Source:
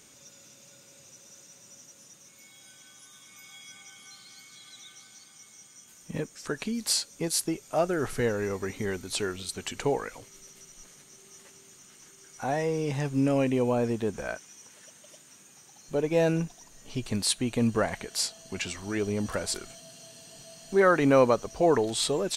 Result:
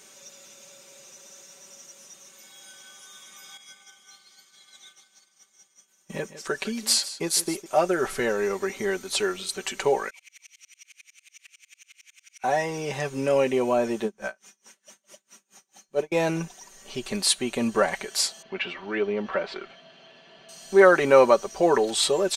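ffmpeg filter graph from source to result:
-filter_complex "[0:a]asettb=1/sr,asplit=3[a][b][c];[a]atrim=end=3.574[d];[b]atrim=start=3.57:end=7.66,asetpts=PTS-STARTPTS,afade=t=in:d=0.004:c=qsin,afade=t=out:st=4.086:d=0.004:c=qsin,agate=range=-33dB:threshold=-44dB:ratio=3:release=100:detection=peak,aecho=1:1:156:0.188,atrim=end_sample=180369[e];[c]atrim=start=7.656[f];[d][e]acrossfade=d=0.004:c1=hsin:c2=qsin[g];[g][f]acrossfade=d=0.004:c1=qsin:c2=hsin,asettb=1/sr,asplit=3[h][i][j];[h]atrim=end=10.104[k];[i]atrim=start=10.1:end=12.44,asetpts=PTS-STARTPTS,afade=t=in:d=0.004:c=qsin,afade=t=out:st=2.336:d=0.004:c=qsin,highpass=f=2.4k:t=q:w=7.4,aecho=1:1:260:0.299,atrim=end_sample=103194,aeval=exprs='val(0)*pow(10,-36*if(lt(mod(-11*n/s,1),2*abs(-11)/1000),1-mod(-11*n/s,1)/(2*abs(-11)/1000),(mod(-11*n/s,1)-2*abs(-11)/1000)/(1-2*abs(-11)/1000))/20)':c=same[l];[j]atrim=start=12.436[m];[k][l]acrossfade=d=0.004:c1=hsin:c2=qsin[n];[n][m]acrossfade=d=0.004:c1=qsin:c2=hsin,asettb=1/sr,asplit=3[o][p][q];[o]atrim=end=14.044[r];[p]atrim=start=14.04:end=16.12,asetpts=PTS-STARTPTS,afade=t=in:d=0.004:c=qsin,afade=t=out:st=2.076:d=0.004:c=qsin,equalizer=f=210:t=o:w=0.24:g=8.5,aeval=exprs='val(0)*pow(10,-32*(0.5-0.5*cos(2*PI*4.6*n/s))/20)':c=same[s];[q]atrim=start=16.116[t];[r][s]acrossfade=d=0.004:c1=hsin:c2=qsin[u];[u][t]acrossfade=d=0.004:c1=qsin:c2=hsin,asettb=1/sr,asplit=3[v][w][x];[v]atrim=end=18.424[y];[w]atrim=start=18.42:end=20.49,asetpts=PTS-STARTPTS,afade=t=in:d=0.004:c=qsin,afade=t=out:st=2.066:d=0.004:c=qsin,lowpass=f=3.2k:w=0.5412,lowpass=f=3.2k:w=1.3066,lowshelf=f=77:g=-12[z];[x]atrim=start=20.486[aa];[y][z]acrossfade=d=0.004:c1=hsin:c2=qsin[ab];[ab][aa]acrossfade=d=0.004:c1=qsin:c2=hsin,bass=f=250:g=-13,treble=f=4k:g=-2,aecho=1:1:5.2:0.63,volume=4.5dB"

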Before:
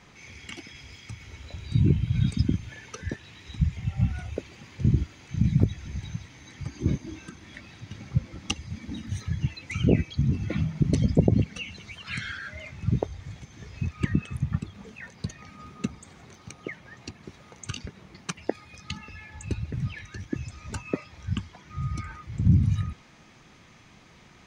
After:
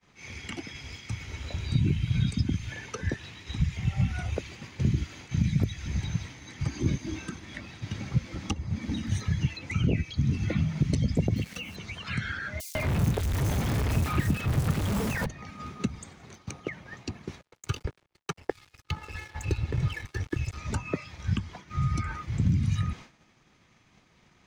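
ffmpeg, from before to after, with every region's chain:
-filter_complex "[0:a]asettb=1/sr,asplit=3[a][b][c];[a]atrim=end=11.364[d];[b]atrim=start=11.36:end=11.76,asetpts=PTS-STARTPTS,afade=t=in:d=0.004:c=qsin,afade=t=out:st=0.396:d=0.004:c=qsin,lowshelf=f=120:g=-9,aeval=exprs='val(0)*gte(abs(val(0)),0.00501)':c=same[e];[c]atrim=start=11.756[f];[d][e]acrossfade=d=0.004:c1=hsin:c2=qsin[g];[g][f]acrossfade=d=0.004:c1=qsin:c2=hsin,asettb=1/sr,asplit=3[h][i][j];[h]atrim=end=12.604[k];[i]atrim=start=12.6:end=15.26,asetpts=PTS-STARTPTS,afade=t=in:d=0.004:c=qsin,afade=t=out:st=2.656:d=0.004:c=qsin,aeval=exprs='val(0)+0.5*0.0631*sgn(val(0))':c=same,acrusher=bits=8:mode=log:mix=0:aa=0.000001,acrossover=split=4800[l][m];[l]adelay=150[n];[n][m]amix=inputs=2:normalize=0,atrim=end_sample=117306[o];[j]atrim=start=15.256[p];[k][o]acrossfade=d=0.004:c1=hsin:c2=qsin[q];[q][p]acrossfade=d=0.004:c1=qsin:c2=hsin,asettb=1/sr,asplit=3[r][s][t];[r]atrim=end=17.414[u];[s]atrim=start=17.41:end=20.58,asetpts=PTS-STARTPTS,afade=t=in:d=0.004:c=qsin,afade=t=out:st=3.166:d=0.004:c=qsin,highshelf=f=7k:g=-8,aecho=1:1:2.3:0.84,atrim=end_sample=139797,aeval=exprs='sgn(val(0))*max(abs(val(0))-0.00596,0)':c=same[v];[t]atrim=start=20.576[w];[u][v]acrossfade=d=0.004:c1=hsin:c2=qsin[x];[x][w]acrossfade=d=0.004:c1=qsin:c2=hsin,agate=range=-33dB:threshold=-43dB:ratio=3:detection=peak,acrossover=split=160|1400[y][z][aa];[y]acompressor=threshold=-32dB:ratio=4[ab];[z]acompressor=threshold=-37dB:ratio=4[ac];[aa]acompressor=threshold=-46dB:ratio=4[ad];[ab][ac][ad]amix=inputs=3:normalize=0,volume=6dB"

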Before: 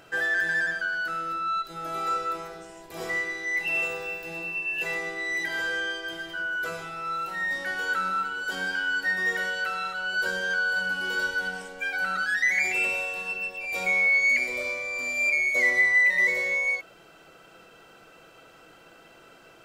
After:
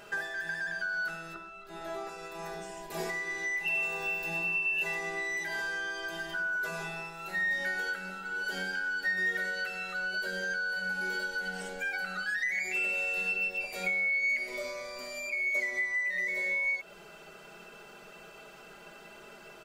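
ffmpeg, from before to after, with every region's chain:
-filter_complex "[0:a]asettb=1/sr,asplit=3[a][b][c];[a]atrim=end=1.344[d];[b]atrim=start=1.34:end=2.09,asetpts=PTS-STARTPTS,afade=t=in:d=0.004:c=qsin,afade=t=out:st=0.746:d=0.004:c=qsin,aemphasis=mode=reproduction:type=cd,asplit=2[e][f];[f]adelay=15,volume=-2.5dB[g];[e][g]amix=inputs=2:normalize=0,atrim=end_sample=33075[h];[c]atrim=start=2.086[i];[d][h]acrossfade=d=0.004:c1=hsin:c2=qsin[j];[j][i]acrossfade=d=0.004:c1=qsin:c2=hsin,acompressor=threshold=-33dB:ratio=6,bandreject=f=50:t=h:w=6,bandreject=f=100:t=h:w=6,bandreject=f=150:t=h:w=6,bandreject=f=200:t=h:w=6,bandreject=f=250:t=h:w=6,aecho=1:1:4.9:0.89"

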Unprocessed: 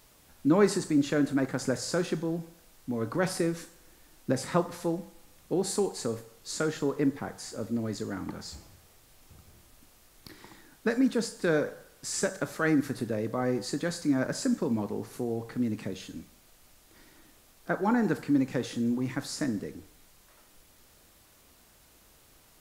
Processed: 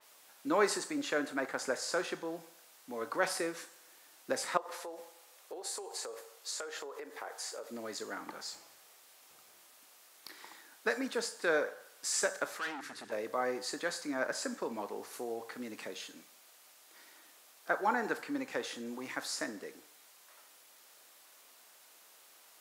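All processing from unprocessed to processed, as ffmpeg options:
-filter_complex "[0:a]asettb=1/sr,asplit=3[a][b][c];[a]atrim=end=4.574[d];[b]atrim=start=4.57:end=7.71,asetpts=PTS-STARTPTS,afade=t=in:d=0.004:c=qsin,afade=t=out:st=3.136:d=0.004:c=qsin,lowshelf=f=300:t=q:w=1.5:g=-12,acompressor=threshold=-35dB:ratio=8:attack=3.2:release=140:knee=1:detection=peak[e];[c]atrim=start=7.706[f];[d][e]acrossfade=d=0.004:c1=hsin:c2=qsin[g];[g][f]acrossfade=d=0.004:c1=qsin:c2=hsin,asettb=1/sr,asplit=3[h][i][j];[h]atrim=end=12.594[k];[i]atrim=start=12.59:end=13.12,asetpts=PTS-STARTPTS,afade=t=in:d=0.004:c=qsin,afade=t=out:st=0.526:d=0.004:c=qsin,lowpass=9.1k,equalizer=f=600:t=o:w=0.8:g=-13.5,volume=33.5dB,asoftclip=hard,volume=-33.5dB[l];[j]atrim=start=13.116[m];[k][l]acrossfade=d=0.004:c1=hsin:c2=qsin[n];[n][m]acrossfade=d=0.004:c1=qsin:c2=hsin,highpass=610,adynamicequalizer=threshold=0.00282:dfrequency=3500:dqfactor=0.7:tfrequency=3500:tqfactor=0.7:attack=5:release=100:ratio=0.375:range=2.5:mode=cutabove:tftype=highshelf,volume=1dB"

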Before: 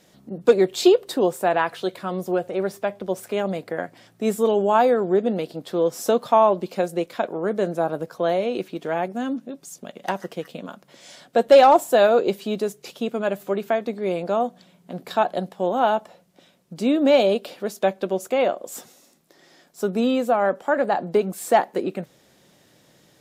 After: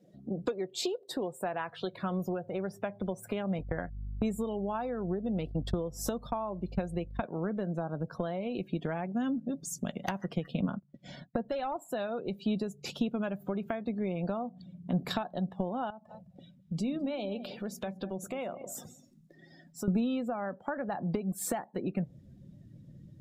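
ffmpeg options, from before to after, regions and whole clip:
-filter_complex "[0:a]asettb=1/sr,asplit=3[a][b][c];[a]atrim=end=3.594[d];[b]atrim=start=3.59:end=7.22,asetpts=PTS-STARTPTS,afade=t=in:d=0.004:c=qsin,afade=t=out:st=3.626:d=0.004:c=qsin,agate=range=-35dB:threshold=-40dB:ratio=16:release=100:detection=peak,aeval=exprs='val(0)+0.00282*(sin(2*PI*50*n/s)+sin(2*PI*2*50*n/s)/2+sin(2*PI*3*50*n/s)/3+sin(2*PI*4*50*n/s)/4+sin(2*PI*5*50*n/s)/5)':c=same[e];[c]atrim=start=7.216[f];[d][e]acrossfade=d=0.004:c1=hsin:c2=qsin[g];[g][f]acrossfade=d=0.004:c1=qsin:c2=hsin,asettb=1/sr,asplit=3[h][i][j];[h]atrim=end=10.604[k];[i]atrim=start=10.6:end=11.49,asetpts=PTS-STARTPTS,afade=t=in:d=0.004:c=qsin,afade=t=out:st=0.886:d=0.004:c=qsin,agate=range=-20dB:threshold=-48dB:ratio=16:release=100:detection=peak,lowpass=f=2.7k:p=1,lowshelf=f=320:g=6[l];[j]atrim=start=11.486[m];[k][l]acrossfade=d=0.004:c1=hsin:c2=qsin[n];[n][m]acrossfade=d=0.004:c1=qsin:c2=hsin,asettb=1/sr,asplit=3[o][p][q];[o]atrim=end=15.904[r];[p]atrim=start=15.9:end=19.88,asetpts=PTS-STARTPTS,afade=t=in:d=0.004:c=qsin,afade=t=out:st=3.976:d=0.004:c=qsin,bandreject=f=60:t=h:w=6,bandreject=f=120:t=h:w=6,bandreject=f=180:t=h:w=6,bandreject=f=240:t=h:w=6,bandreject=f=300:t=h:w=6,acompressor=threshold=-43dB:ratio=2:attack=3.2:release=140:knee=1:detection=peak,aecho=1:1:208:0.2,atrim=end_sample=175518[s];[q]atrim=start=19.876[t];[r][s]acrossfade=d=0.004:c1=hsin:c2=qsin[u];[u][t]acrossfade=d=0.004:c1=qsin:c2=hsin,acompressor=threshold=-31dB:ratio=12,asubboost=boost=6:cutoff=160,afftdn=nr=24:nf=-51,volume=1.5dB"

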